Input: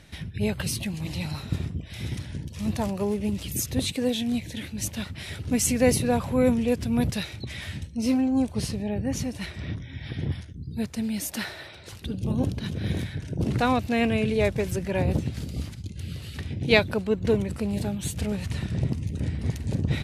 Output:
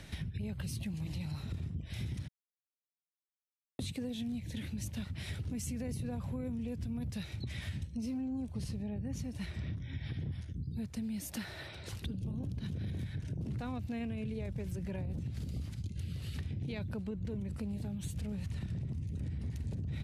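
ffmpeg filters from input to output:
ffmpeg -i in.wav -filter_complex "[0:a]asplit=3[link_01][link_02][link_03];[link_01]atrim=end=2.28,asetpts=PTS-STARTPTS,afade=type=out:start_time=2.276:duration=0.004:curve=hsin[link_04];[link_02]atrim=start=2.28:end=3.79,asetpts=PTS-STARTPTS,volume=0[link_05];[link_03]atrim=start=3.79,asetpts=PTS-STARTPTS,afade=type=in:duration=0.004:curve=hsin[link_06];[link_04][link_05][link_06]concat=n=3:v=0:a=1,acrossover=split=210[link_07][link_08];[link_08]acompressor=threshold=-59dB:ratio=1.5[link_09];[link_07][link_09]amix=inputs=2:normalize=0,alimiter=level_in=1.5dB:limit=-24dB:level=0:latency=1:release=25,volume=-1.5dB,acompressor=threshold=-39dB:ratio=4,volume=2.5dB" out.wav

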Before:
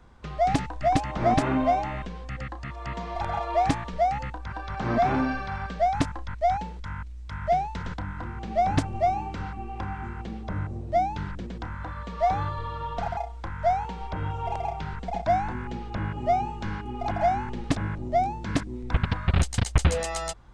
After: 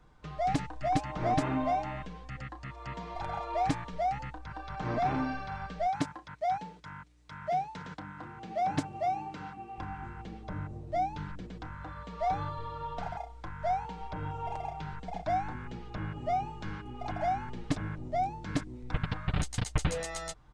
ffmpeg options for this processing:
ffmpeg -i in.wav -filter_complex "[0:a]asettb=1/sr,asplit=3[link_01][link_02][link_03];[link_01]atrim=end=5.864[link_04];[link_02]atrim=start=5.86:end=9.78,asetpts=PTS-STARTPTS,afade=type=in:duration=0.004:curve=qsin,afade=type=out:start_time=3.916:duration=0.004:curve=qsin,highpass=140[link_05];[link_03]atrim=start=9.776[link_06];[link_04][link_05]acrossfade=duration=0.004:curve1=hsin:curve2=qsin[link_07];[link_07][link_06]acrossfade=duration=0.004:curve1=qsin:curve2=hsin,aecho=1:1:6.6:0.46,volume=-7dB" out.wav

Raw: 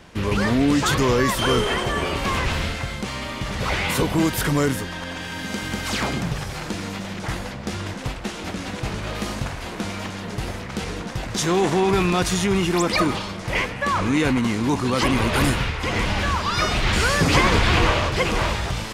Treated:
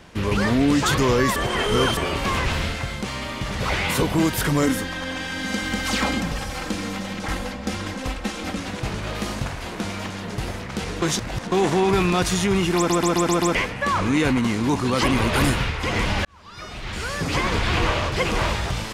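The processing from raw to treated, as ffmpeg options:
ffmpeg -i in.wav -filter_complex "[0:a]asettb=1/sr,asplit=3[link_01][link_02][link_03];[link_01]atrim=end=4.624[link_04];[link_02]atrim=start=4.62:end=8.6,asetpts=PTS-STARTPTS,afade=type=in:duration=0.004:curve=qsin,afade=type=out:start_time=3.976:duration=0.004:curve=qsin,aecho=1:1:3.8:0.65,atrim=end_sample=175518[link_05];[link_03]atrim=start=8.596[link_06];[link_04][link_05]acrossfade=duration=0.004:curve1=hsin:curve2=qsin[link_07];[link_07][link_06]acrossfade=duration=0.004:curve1=qsin:curve2=hsin,asplit=12[link_08][link_09][link_10][link_11][link_12][link_13][link_14][link_15][link_16][link_17][link_18][link_19];[link_08]atrim=end=1.362[link_20];[link_09]atrim=start=1.358:end=1.972,asetpts=PTS-STARTPTS,areverse[link_21];[link_10]atrim=start=1.968:end=11.022[link_22];[link_11]atrim=start=11.018:end=11.522,asetpts=PTS-STARTPTS,areverse[link_23];[link_12]atrim=start=11.518:end=12.902[link_24];[link_13]atrim=start=12.768:end=12.902[link_25];[link_14]atrim=start=12.768:end=12.902[link_26];[link_15]atrim=start=12.768:end=12.902[link_27];[link_16]atrim=start=12.768:end=12.902[link_28];[link_17]atrim=start=12.768:end=12.902[link_29];[link_18]atrim=start=13.548:end=16.25,asetpts=PTS-STARTPTS,afade=type=out:start_time=2.698:duration=0.004:curve=hsin[link_30];[link_19]atrim=start=16.25,asetpts=PTS-STARTPTS,afade=type=in:duration=2.26[link_31];[link_20][link_21]acrossfade=duration=0.004:curve1=hsin:curve2=hsin[link_32];[link_32][link_22]acrossfade=duration=0.004:curve1=hsin:curve2=hsin[link_33];[link_33][link_23]acrossfade=duration=0.004:curve1=hsin:curve2=hsin[link_34];[link_34][link_24]acrossfade=duration=0.004:curve1=hsin:curve2=hsin[link_35];[link_35][link_25]acrossfade=duration=0.004:curve1=hsin:curve2=hsin[link_36];[link_36][link_26]acrossfade=duration=0.004:curve1=hsin:curve2=hsin[link_37];[link_37][link_27]acrossfade=duration=0.004:curve1=hsin:curve2=hsin[link_38];[link_38][link_28]acrossfade=duration=0.004:curve1=hsin:curve2=hsin[link_39];[link_39][link_29]acrossfade=duration=0.004:curve1=hsin:curve2=hsin[link_40];[link_30][link_31]concat=n=2:v=0:a=1[link_41];[link_40][link_41]acrossfade=duration=0.004:curve1=hsin:curve2=hsin" out.wav

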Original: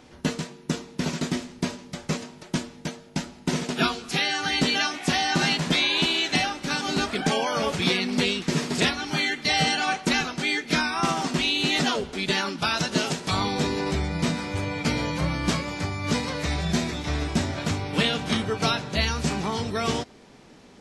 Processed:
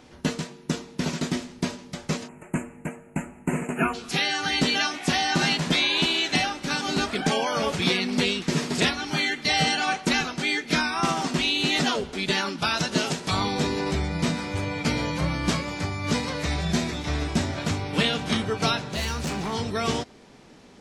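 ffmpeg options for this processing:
ffmpeg -i in.wav -filter_complex "[0:a]asplit=3[link_01][link_02][link_03];[link_01]afade=type=out:start_time=2.27:duration=0.02[link_04];[link_02]asuperstop=centerf=4400:order=12:qfactor=1,afade=type=in:start_time=2.27:duration=0.02,afade=type=out:start_time=3.93:duration=0.02[link_05];[link_03]afade=type=in:start_time=3.93:duration=0.02[link_06];[link_04][link_05][link_06]amix=inputs=3:normalize=0,asettb=1/sr,asplit=3[link_07][link_08][link_09];[link_07]atrim=end=18.934[link_10];[link_08]atrim=start=18.93:end=19.53,asetpts=PTS-STARTPTS,afade=type=in:duration=0.004:curve=qsin,afade=type=out:start_time=0.596:duration=0.004:curve=qsin,asoftclip=type=hard:threshold=-25dB[link_11];[link_09]atrim=start=19.526[link_12];[link_10][link_11]acrossfade=duration=0.004:curve1=hsin:curve2=qsin[link_13];[link_13][link_12]acrossfade=duration=0.004:curve1=qsin:curve2=hsin" out.wav

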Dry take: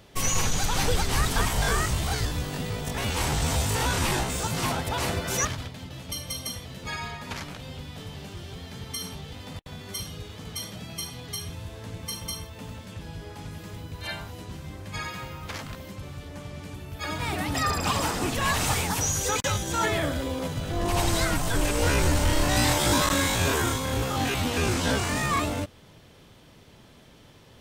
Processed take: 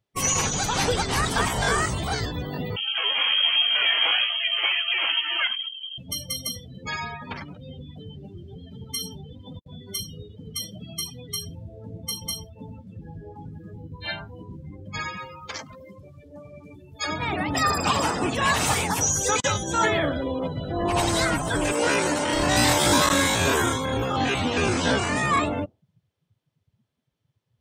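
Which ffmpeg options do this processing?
ffmpeg -i in.wav -filter_complex "[0:a]asettb=1/sr,asplit=3[link_01][link_02][link_03];[link_01]atrim=end=2.764[link_04];[link_02]atrim=start=2.76:end=5.98,asetpts=PTS-STARTPTS,afade=type=in:duration=0.004:curve=qsin,afade=type=out:start_time=3.216:duration=0.004:curve=qsin,lowpass=frequency=2800:width_type=q:width=0.5098,lowpass=frequency=2800:width_type=q:width=0.6013,lowpass=frequency=2800:width_type=q:width=0.9,lowpass=frequency=2800:width_type=q:width=2.563,afreqshift=-3300[link_05];[link_03]atrim=start=5.976[link_06];[link_04][link_05]acrossfade=duration=0.004:curve1=hsin:curve2=qsin[link_07];[link_07][link_06]acrossfade=duration=0.004:curve1=qsin:curve2=hsin,asettb=1/sr,asplit=3[link_08][link_09][link_10];[link_08]atrim=end=15.174[link_11];[link_09]atrim=start=15.17:end=17.07,asetpts=PTS-STARTPTS,afade=type=in:duration=0.004:curve=qsin,afade=type=out:start_time=1.896:duration=0.004:curve=qsin,bass=frequency=250:gain=-7,treble=frequency=4000:gain=8[link_12];[link_10]atrim=start=17.066[link_13];[link_11][link_12]acrossfade=duration=0.004:curve1=hsin:curve2=qsin[link_14];[link_14][link_13]acrossfade=duration=0.004:curve1=qsin:curve2=hsin,asettb=1/sr,asplit=3[link_15][link_16][link_17];[link_15]atrim=end=21.724[link_18];[link_16]atrim=start=21.72:end=22.33,asetpts=PTS-STARTPTS,afade=type=in:duration=0.004:curve=qsin,afade=type=out:start_time=0.606:duration=0.004:curve=qsin,highpass=210[link_19];[link_17]atrim=start=22.326[link_20];[link_18][link_19]acrossfade=duration=0.004:curve1=hsin:curve2=qsin[link_21];[link_21][link_20]acrossfade=duration=0.004:curve1=qsin:curve2=hsin,highshelf=frequency=12000:gain=2.5,afftdn=noise_reduction=34:noise_floor=-35,highpass=frequency=160:poles=1,volume=4.5dB" out.wav

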